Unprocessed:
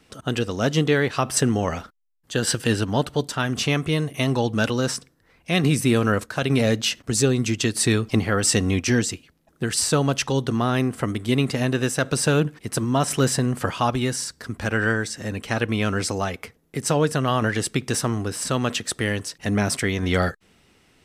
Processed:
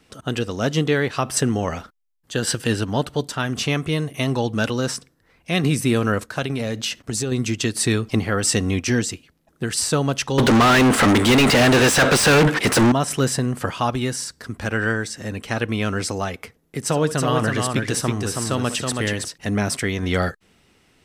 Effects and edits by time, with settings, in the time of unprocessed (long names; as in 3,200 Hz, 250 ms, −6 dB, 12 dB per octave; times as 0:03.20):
0:06.41–0:07.32: downward compressor, threshold −20 dBFS
0:10.38–0:12.92: mid-hump overdrive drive 38 dB, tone 3,500 Hz, clips at −7 dBFS
0:16.85–0:19.28: multi-tap delay 65/324 ms −14.5/−4 dB